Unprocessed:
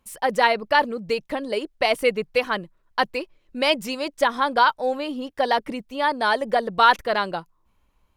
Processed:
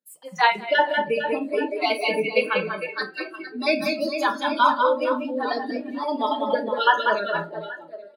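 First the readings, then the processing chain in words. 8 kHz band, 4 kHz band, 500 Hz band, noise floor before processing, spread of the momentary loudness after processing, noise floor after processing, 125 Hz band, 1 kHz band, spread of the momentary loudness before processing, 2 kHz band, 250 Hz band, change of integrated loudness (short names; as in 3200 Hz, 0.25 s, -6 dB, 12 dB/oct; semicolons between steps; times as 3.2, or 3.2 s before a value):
-5.0 dB, -2.5 dB, 0.0 dB, -66 dBFS, 11 LU, -45 dBFS, -0.5 dB, -1.0 dB, 11 LU, 0.0 dB, +1.5 dB, -0.5 dB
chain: random spectral dropouts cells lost 36%; steep high-pass 150 Hz 36 dB/oct; on a send: reverse bouncing-ball echo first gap 0.19 s, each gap 1.4×, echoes 5; on the sum: shoebox room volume 91 m³, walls mixed, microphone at 0.45 m; spectral noise reduction 19 dB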